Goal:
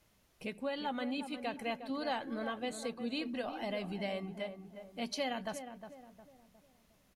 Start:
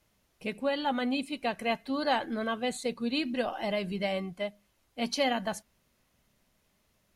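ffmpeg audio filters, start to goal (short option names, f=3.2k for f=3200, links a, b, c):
-filter_complex "[0:a]acompressor=threshold=-51dB:ratio=1.5,asplit=2[a][b];[b]adelay=359,lowpass=f=1.2k:p=1,volume=-8.5dB,asplit=2[c][d];[d]adelay=359,lowpass=f=1.2k:p=1,volume=0.44,asplit=2[e][f];[f]adelay=359,lowpass=f=1.2k:p=1,volume=0.44,asplit=2[g][h];[h]adelay=359,lowpass=f=1.2k:p=1,volume=0.44,asplit=2[i][j];[j]adelay=359,lowpass=f=1.2k:p=1,volume=0.44[k];[a][c][e][g][i][k]amix=inputs=6:normalize=0,volume=1dB"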